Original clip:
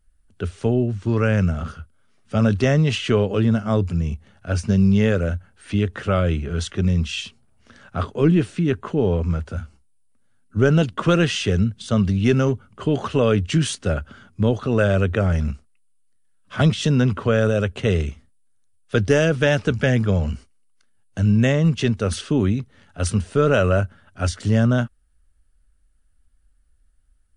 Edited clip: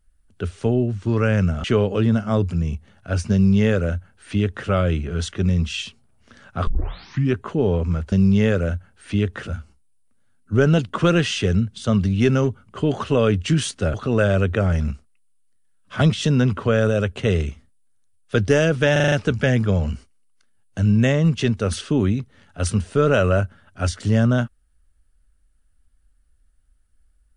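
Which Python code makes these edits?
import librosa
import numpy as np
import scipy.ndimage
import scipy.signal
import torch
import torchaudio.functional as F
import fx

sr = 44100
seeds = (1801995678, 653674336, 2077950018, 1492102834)

y = fx.edit(x, sr, fx.cut(start_s=1.64, length_s=1.39),
    fx.duplicate(start_s=4.72, length_s=1.35, to_s=9.51),
    fx.tape_start(start_s=8.06, length_s=0.68),
    fx.cut(start_s=13.98, length_s=0.56),
    fx.stutter(start_s=19.52, slice_s=0.04, count=6), tone=tone)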